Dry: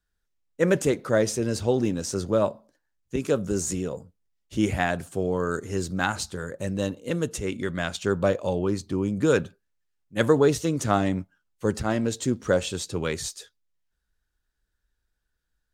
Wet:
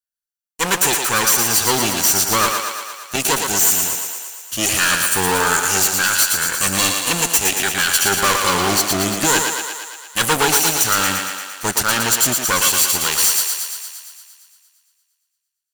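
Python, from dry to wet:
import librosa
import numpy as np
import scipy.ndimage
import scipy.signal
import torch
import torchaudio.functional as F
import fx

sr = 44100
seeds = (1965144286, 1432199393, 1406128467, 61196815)

p1 = fx.lower_of_two(x, sr, delay_ms=0.68)
p2 = scipy.signal.lfilter([1.0, -0.97], [1.0], p1)
p3 = fx.rider(p2, sr, range_db=4, speed_s=0.5)
p4 = fx.leveller(p3, sr, passes=5)
p5 = p4 + fx.echo_thinned(p4, sr, ms=115, feedback_pct=68, hz=310.0, wet_db=-4.5, dry=0)
y = F.gain(torch.from_numpy(p5), 9.0).numpy()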